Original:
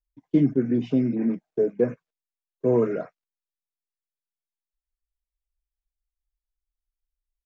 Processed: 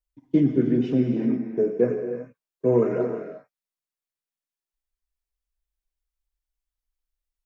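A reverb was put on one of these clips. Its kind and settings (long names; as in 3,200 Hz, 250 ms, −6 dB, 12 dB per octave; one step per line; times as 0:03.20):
reverb whose tail is shaped and stops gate 400 ms flat, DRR 4 dB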